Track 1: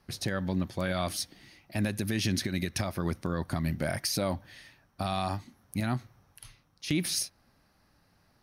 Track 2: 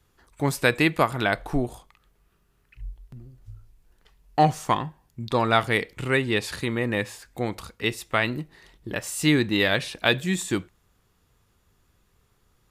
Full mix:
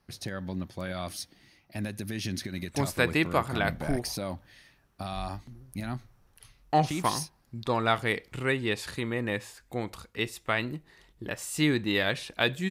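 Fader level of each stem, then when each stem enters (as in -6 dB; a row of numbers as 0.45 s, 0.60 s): -4.5 dB, -5.0 dB; 0.00 s, 2.35 s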